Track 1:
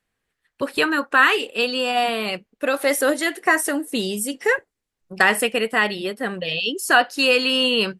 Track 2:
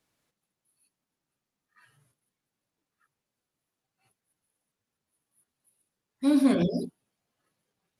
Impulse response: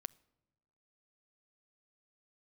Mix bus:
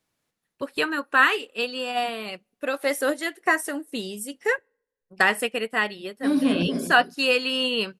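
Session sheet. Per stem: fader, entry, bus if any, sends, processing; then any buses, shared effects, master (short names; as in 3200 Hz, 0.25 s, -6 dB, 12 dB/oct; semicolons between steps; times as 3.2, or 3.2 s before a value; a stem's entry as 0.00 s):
-3.0 dB, 0.00 s, send -14.5 dB, no echo send, upward expander 1.5:1, over -38 dBFS
0.0 dB, 0.00 s, muted 4.43–5.78, no send, echo send -10.5 dB, dry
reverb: on, pre-delay 7 ms
echo: echo 0.247 s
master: dry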